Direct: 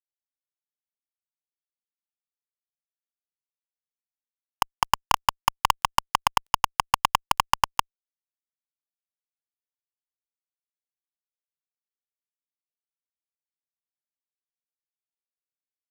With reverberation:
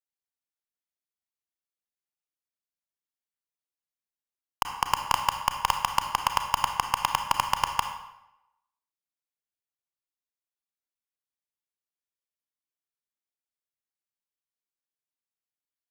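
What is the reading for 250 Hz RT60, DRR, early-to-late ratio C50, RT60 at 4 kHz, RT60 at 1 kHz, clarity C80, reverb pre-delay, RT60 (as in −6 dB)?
0.80 s, 5.5 dB, 7.0 dB, 0.70 s, 0.90 s, 9.0 dB, 29 ms, 0.85 s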